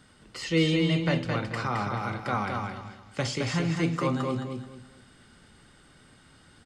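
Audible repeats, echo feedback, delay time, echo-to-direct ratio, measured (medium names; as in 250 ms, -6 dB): 3, 28%, 217 ms, -3.5 dB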